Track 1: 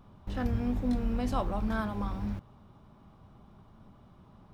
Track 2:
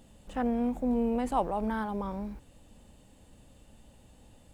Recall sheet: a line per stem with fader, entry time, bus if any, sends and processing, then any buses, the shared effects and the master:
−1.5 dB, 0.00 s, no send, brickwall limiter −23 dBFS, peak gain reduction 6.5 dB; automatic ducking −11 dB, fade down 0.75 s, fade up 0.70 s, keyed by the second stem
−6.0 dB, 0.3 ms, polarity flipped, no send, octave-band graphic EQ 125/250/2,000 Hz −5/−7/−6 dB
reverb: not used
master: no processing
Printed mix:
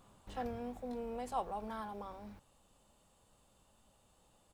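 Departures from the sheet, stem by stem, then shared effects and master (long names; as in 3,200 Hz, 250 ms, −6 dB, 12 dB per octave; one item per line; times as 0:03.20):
stem 1: missing brickwall limiter −23 dBFS, peak gain reduction 6.5 dB
master: extra low-shelf EQ 330 Hz −10.5 dB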